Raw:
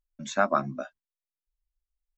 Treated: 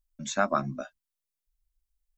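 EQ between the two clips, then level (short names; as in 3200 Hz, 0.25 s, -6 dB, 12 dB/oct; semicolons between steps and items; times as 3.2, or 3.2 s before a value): low shelf 150 Hz +9.5 dB; high shelf 3900 Hz +9.5 dB; -3.0 dB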